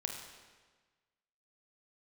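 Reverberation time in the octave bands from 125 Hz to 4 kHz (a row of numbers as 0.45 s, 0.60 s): 1.5 s, 1.4 s, 1.4 s, 1.4 s, 1.3 s, 1.2 s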